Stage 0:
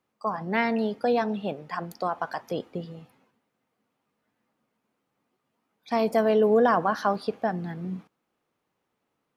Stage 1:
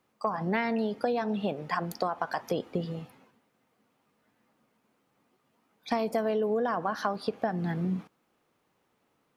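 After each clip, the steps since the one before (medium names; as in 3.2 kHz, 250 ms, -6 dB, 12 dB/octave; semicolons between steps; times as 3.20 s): compression 8:1, threshold -31 dBFS, peak gain reduction 14.5 dB; trim +5.5 dB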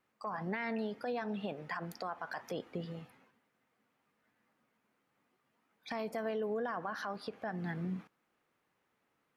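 peaking EQ 1.8 kHz +6.5 dB 1.2 oct; peak limiter -20 dBFS, peak gain reduction 8 dB; wow and flutter 22 cents; trim -8 dB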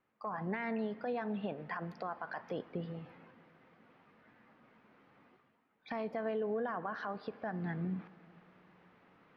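distance through air 280 m; reverse; upward compressor, threshold -52 dBFS; reverse; reverberation RT60 3.4 s, pre-delay 29 ms, DRR 18.5 dB; trim +1 dB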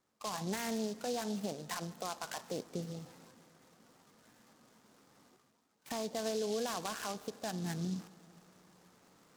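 delay time shaken by noise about 4.8 kHz, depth 0.088 ms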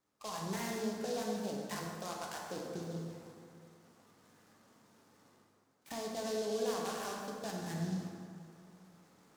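plate-style reverb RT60 2.3 s, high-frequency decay 0.5×, DRR -1.5 dB; trim -4.5 dB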